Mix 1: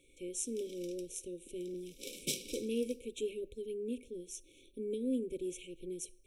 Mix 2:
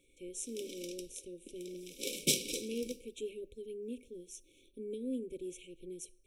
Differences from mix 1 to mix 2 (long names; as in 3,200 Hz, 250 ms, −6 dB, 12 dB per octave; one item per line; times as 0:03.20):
speech −3.5 dB
background +7.0 dB